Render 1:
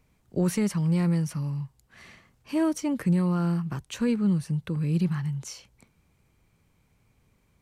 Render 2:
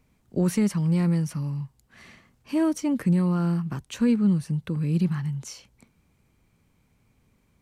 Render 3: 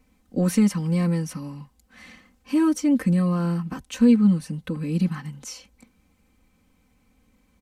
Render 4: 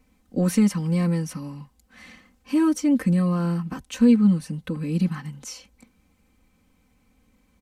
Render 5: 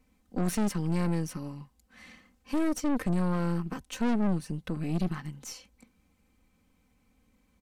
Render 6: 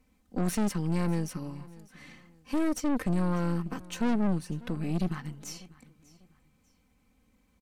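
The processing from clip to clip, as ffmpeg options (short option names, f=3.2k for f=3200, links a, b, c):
-af "equalizer=f=240:t=o:w=0.67:g=4.5"
-af "aecho=1:1:3.9:0.98"
-af anull
-af "aeval=exprs='(tanh(17.8*val(0)+0.8)-tanh(0.8))/17.8':c=same"
-af "aecho=1:1:595|1190:0.0891|0.0294"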